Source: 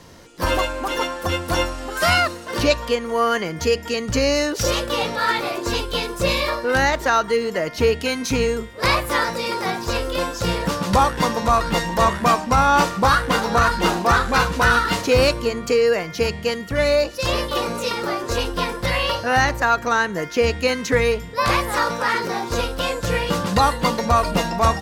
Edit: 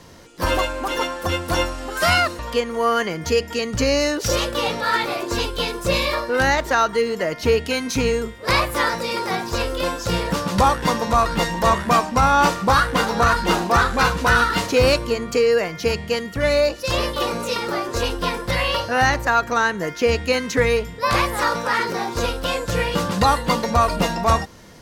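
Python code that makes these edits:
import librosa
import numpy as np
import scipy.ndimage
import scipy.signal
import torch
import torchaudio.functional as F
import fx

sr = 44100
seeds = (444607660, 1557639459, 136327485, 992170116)

y = fx.edit(x, sr, fx.cut(start_s=2.39, length_s=0.35), tone=tone)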